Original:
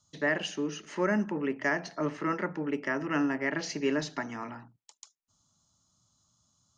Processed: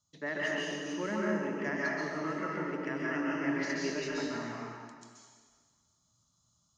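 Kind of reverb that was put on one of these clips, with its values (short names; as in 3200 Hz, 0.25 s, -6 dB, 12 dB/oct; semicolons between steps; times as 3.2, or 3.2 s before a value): plate-style reverb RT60 1.7 s, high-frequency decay 0.95×, pre-delay 0.115 s, DRR -5.5 dB; gain -9 dB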